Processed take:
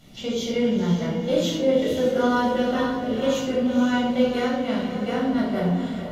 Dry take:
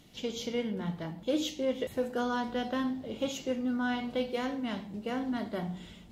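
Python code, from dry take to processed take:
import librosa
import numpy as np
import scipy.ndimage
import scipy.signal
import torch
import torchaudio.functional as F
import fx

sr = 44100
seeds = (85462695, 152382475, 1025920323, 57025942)

p1 = x + fx.echo_diffused(x, sr, ms=494, feedback_pct=42, wet_db=-7.5, dry=0)
y = fx.room_shoebox(p1, sr, seeds[0], volume_m3=1000.0, walls='furnished', distance_m=7.0)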